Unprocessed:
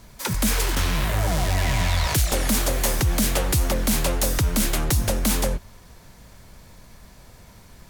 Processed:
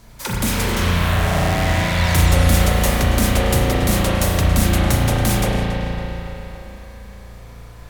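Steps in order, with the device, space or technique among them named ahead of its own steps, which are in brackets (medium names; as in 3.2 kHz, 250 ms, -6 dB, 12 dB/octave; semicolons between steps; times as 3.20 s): dub delay into a spring reverb (filtered feedback delay 279 ms, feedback 64%, low-pass 4.1 kHz, level -9.5 dB; spring tank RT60 3 s, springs 35 ms, chirp 30 ms, DRR -4.5 dB)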